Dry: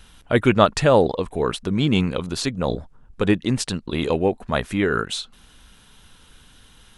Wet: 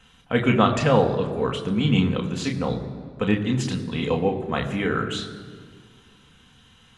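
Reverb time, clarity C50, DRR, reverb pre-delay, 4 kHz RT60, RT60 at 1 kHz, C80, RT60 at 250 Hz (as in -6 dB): 1.9 s, 10.5 dB, 2.0 dB, 3 ms, 1.3 s, 1.8 s, 11.0 dB, 2.4 s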